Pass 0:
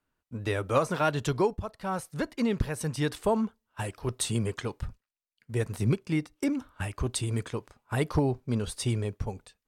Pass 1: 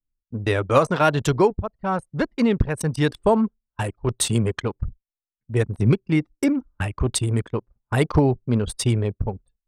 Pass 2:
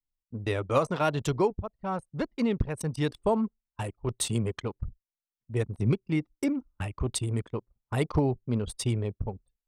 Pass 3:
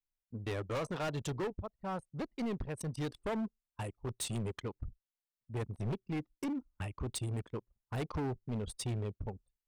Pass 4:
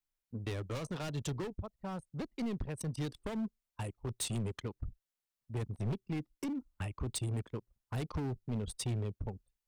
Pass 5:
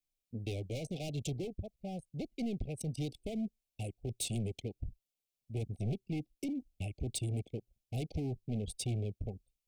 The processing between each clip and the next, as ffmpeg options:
ffmpeg -i in.wav -af "anlmdn=2.51,volume=8dB" out.wav
ffmpeg -i in.wav -af "equalizer=frequency=1600:width_type=o:width=0.32:gain=-5.5,volume=-7.5dB" out.wav
ffmpeg -i in.wav -af "asoftclip=type=hard:threshold=-26.5dB,volume=-6dB" out.wav
ffmpeg -i in.wav -filter_complex "[0:a]acrossover=split=280|3000[link_01][link_02][link_03];[link_02]acompressor=threshold=-45dB:ratio=3[link_04];[link_01][link_04][link_03]amix=inputs=3:normalize=0,volume=1.5dB" out.wav
ffmpeg -i in.wav -af "asuperstop=centerf=1300:order=20:qfactor=0.94" out.wav

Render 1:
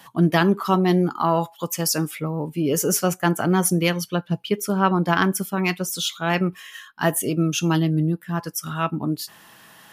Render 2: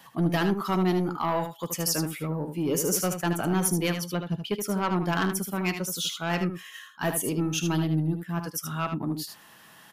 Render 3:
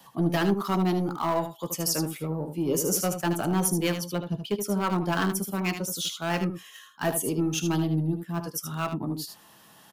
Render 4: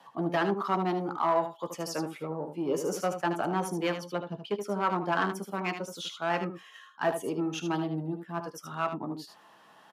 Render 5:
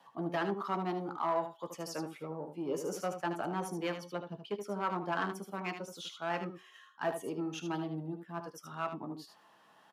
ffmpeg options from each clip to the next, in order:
ffmpeg -i in.wav -filter_complex "[0:a]acrossover=split=4500[link_01][link_02];[link_01]asoftclip=type=tanh:threshold=-14.5dB[link_03];[link_03][link_02]amix=inputs=2:normalize=0,aecho=1:1:76:0.422,volume=-4.5dB" out.wav
ffmpeg -i in.wav -filter_complex "[0:a]acrossover=split=210|1400|2400[link_01][link_02][link_03][link_04];[link_02]asplit=2[link_05][link_06];[link_06]adelay=15,volume=-7dB[link_07];[link_05][link_07]amix=inputs=2:normalize=0[link_08];[link_03]aeval=exprs='val(0)*gte(abs(val(0)),0.0112)':channel_layout=same[link_09];[link_01][link_08][link_09][link_04]amix=inputs=4:normalize=0" out.wav
ffmpeg -i in.wav -af "bandpass=frequency=920:width_type=q:width=0.62:csg=0,volume=1.5dB" out.wav
ffmpeg -i in.wav -af "bandreject=frequency=372.9:width_type=h:width=4,bandreject=frequency=745.8:width_type=h:width=4,bandreject=frequency=1118.7:width_type=h:width=4,bandreject=frequency=1491.6:width_type=h:width=4,bandreject=frequency=1864.5:width_type=h:width=4,bandreject=frequency=2237.4:width_type=h:width=4,bandreject=frequency=2610.3:width_type=h:width=4,bandreject=frequency=2983.2:width_type=h:width=4,bandreject=frequency=3356.1:width_type=h:width=4,bandreject=frequency=3729:width_type=h:width=4,bandreject=frequency=4101.9:width_type=h:width=4,bandreject=frequency=4474.8:width_type=h:width=4,bandreject=frequency=4847.7:width_type=h:width=4,bandreject=frequency=5220.6:width_type=h:width=4,bandreject=frequency=5593.5:width_type=h:width=4,bandreject=frequency=5966.4:width_type=h:width=4,bandreject=frequency=6339.3:width_type=h:width=4,volume=-6dB" out.wav

